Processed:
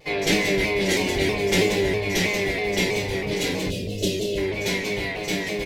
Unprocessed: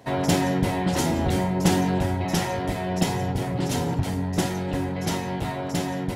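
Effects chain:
octave-band graphic EQ 125/500/1,000/2,000/4,000 Hz −7/+7/−12/+12/+7 dB
single-tap delay 197 ms −7 dB
convolution reverb RT60 0.30 s, pre-delay 3 ms, DRR −3.5 dB
gain on a spectral selection 0:04.04–0:04.77, 640–2,300 Hz −18 dB
wrong playback speed 44.1 kHz file played as 48 kHz
pitch modulation by a square or saw wave saw down 3.1 Hz, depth 100 cents
level −7 dB

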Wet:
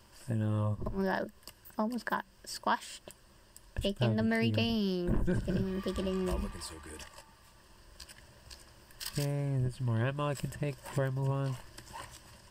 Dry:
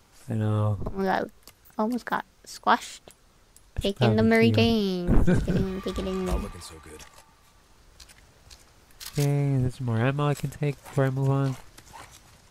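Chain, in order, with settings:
EQ curve with evenly spaced ripples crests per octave 1.3, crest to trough 9 dB
downward compressor 2 to 1, threshold −31 dBFS, peak gain reduction 10.5 dB
level −2 dB

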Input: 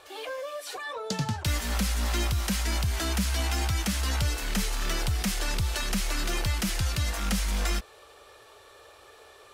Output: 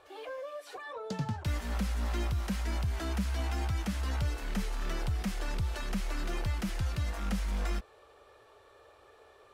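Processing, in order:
high-shelf EQ 2,500 Hz −12 dB
level −4 dB

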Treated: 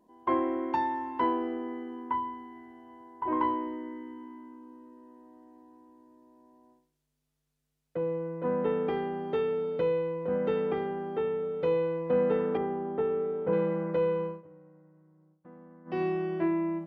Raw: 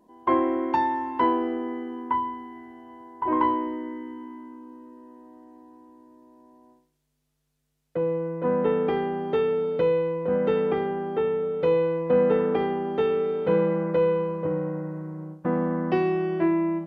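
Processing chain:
0:12.57–0:13.53: low-pass filter 1,500 Hz 12 dB per octave
0:14.26–0:16.02: duck −21 dB, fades 0.17 s
level −5.5 dB

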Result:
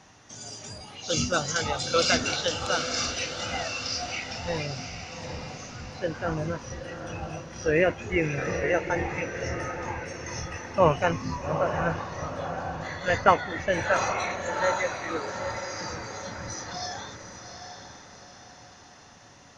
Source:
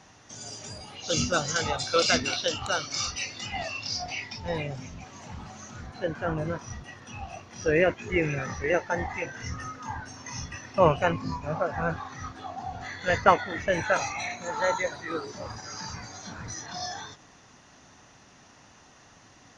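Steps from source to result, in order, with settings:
feedback delay with all-pass diffusion 805 ms, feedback 47%, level −7.5 dB

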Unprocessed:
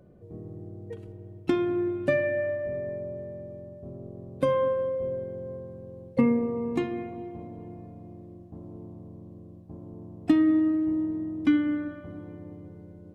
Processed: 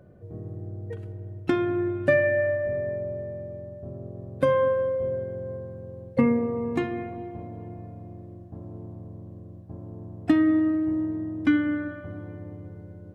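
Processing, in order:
graphic EQ with 15 bands 100 Hz +8 dB, 630 Hz +4 dB, 1,600 Hz +8 dB

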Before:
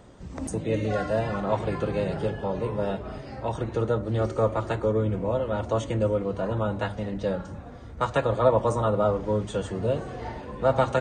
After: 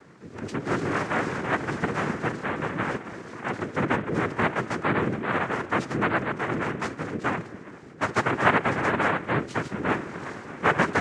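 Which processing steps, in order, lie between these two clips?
cochlear-implant simulation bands 3
high-frequency loss of the air 53 metres

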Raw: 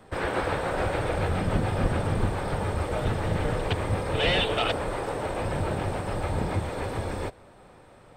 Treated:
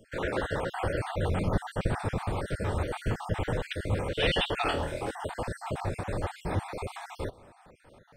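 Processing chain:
time-frequency cells dropped at random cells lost 44%
0:04.64–0:05.11: flutter between parallel walls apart 4.2 metres, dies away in 0.34 s
level −1.5 dB

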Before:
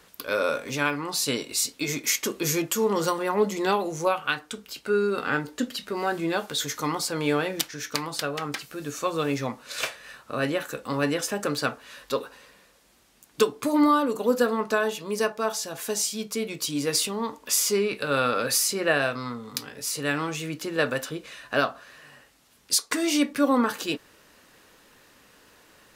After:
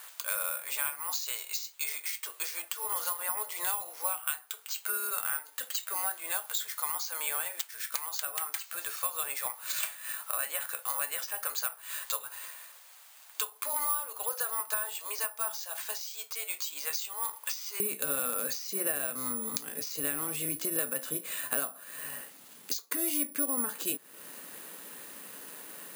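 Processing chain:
high-pass filter 740 Hz 24 dB per octave, from 0:17.80 150 Hz
downward compressor 5 to 1, threshold −42 dBFS, peak gain reduction 22 dB
bad sample-rate conversion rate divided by 4×, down filtered, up zero stuff
level +5 dB

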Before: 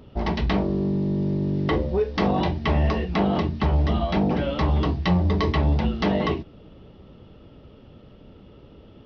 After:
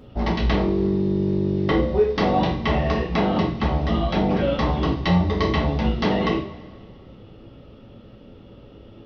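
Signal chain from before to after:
coupled-rooms reverb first 0.39 s, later 1.9 s, from −18 dB, DRR 0.5 dB

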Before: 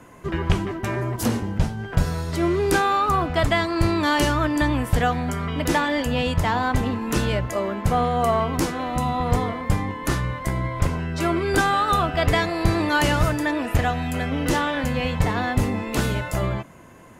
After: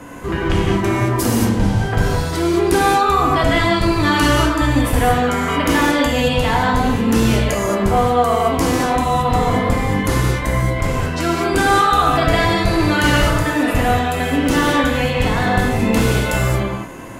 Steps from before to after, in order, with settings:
0:05.22–0:05.67: parametric band 1,300 Hz +8.5 dB 2.1 octaves
in parallel at −2.5 dB: compressor whose output falls as the input rises −31 dBFS, ratio −1
on the sum: reverb whose tail is shaped and stops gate 250 ms flat, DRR −3 dB

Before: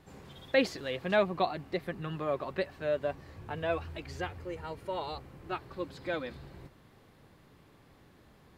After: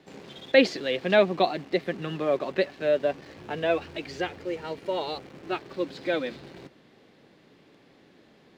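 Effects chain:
parametric band 1,100 Hz −8.5 dB 1.1 octaves
in parallel at −8.5 dB: bit-depth reduction 8 bits, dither none
on the sum: three-way crossover with the lows and the highs turned down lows −21 dB, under 180 Hz, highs −17 dB, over 6,200 Hz
level +7 dB

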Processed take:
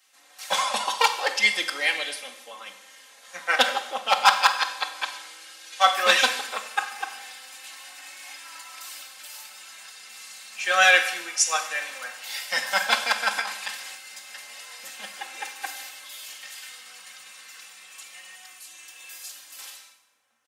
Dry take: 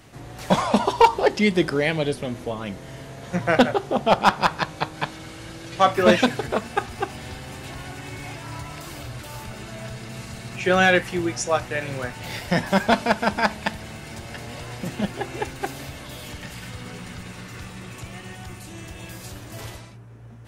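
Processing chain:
high-pass filter 1,100 Hz 12 dB per octave
high-shelf EQ 3,400 Hz +6 dB
comb filter 3.8 ms, depth 79%
0:13.31–0:13.95: compressor whose output falls as the input rises −26 dBFS, ratio −1
four-comb reverb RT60 1.1 s, combs from 31 ms, DRR 8 dB
multiband upward and downward expander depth 40%
level −2 dB

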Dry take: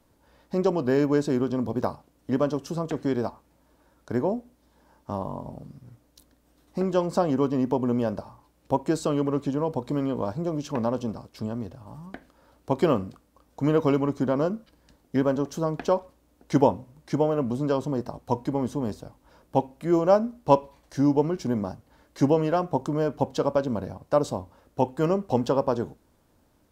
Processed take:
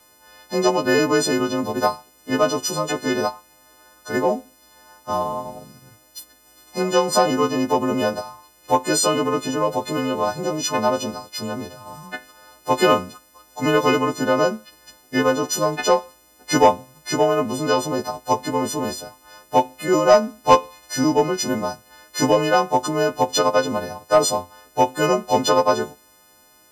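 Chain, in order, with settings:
every partial snapped to a pitch grid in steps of 3 semitones
mid-hump overdrive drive 12 dB, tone 7,500 Hz, clips at −4 dBFS
level +3 dB

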